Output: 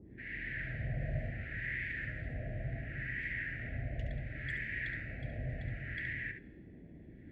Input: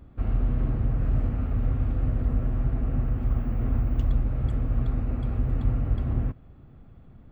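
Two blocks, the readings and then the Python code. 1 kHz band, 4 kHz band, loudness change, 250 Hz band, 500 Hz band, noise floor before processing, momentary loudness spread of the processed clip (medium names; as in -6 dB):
-14.5 dB, no reading, -12.0 dB, -15.0 dB, -9.0 dB, -49 dBFS, 7 LU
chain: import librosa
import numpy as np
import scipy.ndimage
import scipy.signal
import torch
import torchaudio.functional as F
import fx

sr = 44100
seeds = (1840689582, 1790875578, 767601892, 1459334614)

y = fx.fade_in_head(x, sr, length_s=0.78)
y = scipy.signal.sosfilt(scipy.signal.ellip(3, 1.0, 60, [620.0, 1800.0], 'bandstop', fs=sr, output='sos'), y)
y = fx.wah_lfo(y, sr, hz=0.69, low_hz=660.0, high_hz=1900.0, q=2.6)
y = fx.curve_eq(y, sr, hz=(150.0, 330.0, 1900.0, 2800.0), db=(0, -24, 11, 3))
y = fx.rider(y, sr, range_db=5, speed_s=2.0)
y = y + 10.0 ** (-8.5 / 20.0) * np.pad(y, (int(70 * sr / 1000.0), 0))[:len(y)]
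y = fx.dmg_noise_band(y, sr, seeds[0], low_hz=32.0, high_hz=340.0, level_db=-67.0)
y = y * librosa.db_to_amplitude(13.5)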